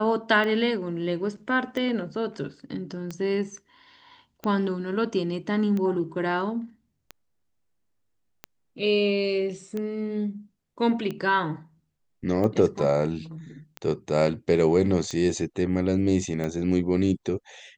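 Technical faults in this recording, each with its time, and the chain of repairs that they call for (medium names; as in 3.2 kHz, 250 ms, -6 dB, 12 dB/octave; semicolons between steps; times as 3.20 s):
tick 45 rpm -19 dBFS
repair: de-click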